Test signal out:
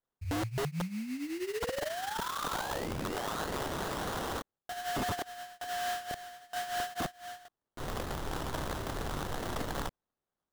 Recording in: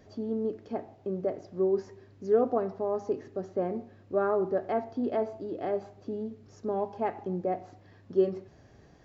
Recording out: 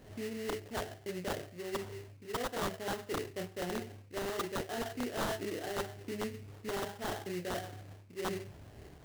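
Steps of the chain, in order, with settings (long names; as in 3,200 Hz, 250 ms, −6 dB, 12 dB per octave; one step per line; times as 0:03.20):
dynamic equaliser 280 Hz, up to −3 dB, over −43 dBFS, Q 2.8
reversed playback
downward compressor 16 to 1, threshold −36 dBFS
reversed playback
multi-voice chorus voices 6, 0.8 Hz, delay 29 ms, depth 1.6 ms
sample-rate reduction 2,400 Hz, jitter 20%
wrap-around overflow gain 34.5 dB
level +5.5 dB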